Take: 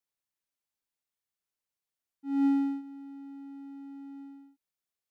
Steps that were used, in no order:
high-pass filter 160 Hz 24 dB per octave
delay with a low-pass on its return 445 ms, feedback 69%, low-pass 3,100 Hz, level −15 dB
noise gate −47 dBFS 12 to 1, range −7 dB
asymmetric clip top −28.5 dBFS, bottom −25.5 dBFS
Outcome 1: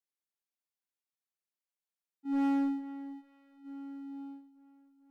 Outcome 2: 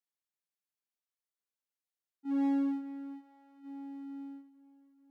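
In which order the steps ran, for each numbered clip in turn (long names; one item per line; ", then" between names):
high-pass filter, then asymmetric clip, then delay with a low-pass on its return, then noise gate
asymmetric clip, then delay with a low-pass on its return, then noise gate, then high-pass filter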